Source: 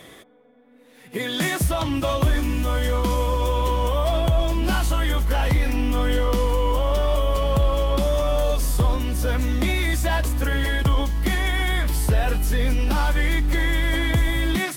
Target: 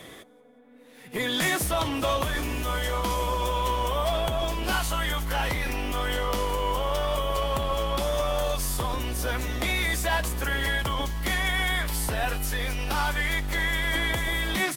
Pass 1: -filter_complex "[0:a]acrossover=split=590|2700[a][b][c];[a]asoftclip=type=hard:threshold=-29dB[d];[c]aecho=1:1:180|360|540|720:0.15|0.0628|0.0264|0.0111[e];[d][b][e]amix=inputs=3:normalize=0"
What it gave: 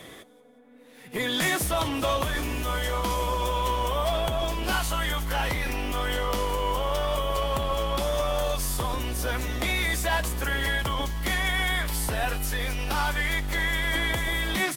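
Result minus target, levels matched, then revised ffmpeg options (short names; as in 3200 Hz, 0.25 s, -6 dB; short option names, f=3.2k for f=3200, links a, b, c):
echo-to-direct +6 dB
-filter_complex "[0:a]acrossover=split=590|2700[a][b][c];[a]asoftclip=type=hard:threshold=-29dB[d];[c]aecho=1:1:180|360|540:0.075|0.0315|0.0132[e];[d][b][e]amix=inputs=3:normalize=0"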